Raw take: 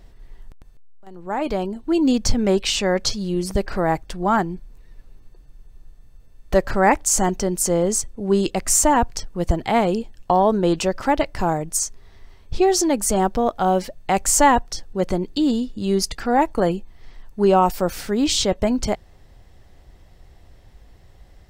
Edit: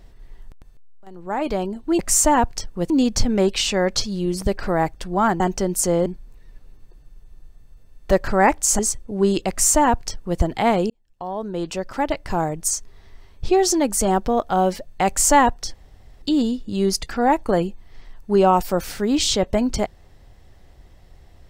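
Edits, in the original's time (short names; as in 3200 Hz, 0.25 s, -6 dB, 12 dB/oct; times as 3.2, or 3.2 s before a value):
7.22–7.88 move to 4.49
8.58–9.49 copy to 1.99
9.99–11.7 fade in
14.83–15.31 room tone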